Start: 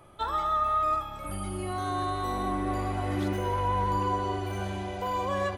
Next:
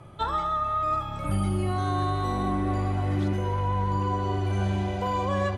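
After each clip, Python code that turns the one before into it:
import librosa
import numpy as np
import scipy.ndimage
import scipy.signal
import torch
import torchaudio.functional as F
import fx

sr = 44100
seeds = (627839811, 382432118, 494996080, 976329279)

y = scipy.signal.sosfilt(scipy.signal.butter(2, 8600.0, 'lowpass', fs=sr, output='sos'), x)
y = fx.peak_eq(y, sr, hz=130.0, db=11.5, octaves=1.3)
y = fx.rider(y, sr, range_db=10, speed_s=0.5)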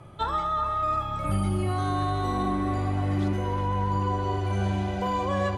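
y = x + 10.0 ** (-11.0 / 20.0) * np.pad(x, (int(376 * sr / 1000.0), 0))[:len(x)]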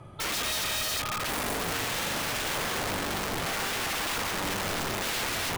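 y = (np.mod(10.0 ** (26.0 / 20.0) * x + 1.0, 2.0) - 1.0) / 10.0 ** (26.0 / 20.0)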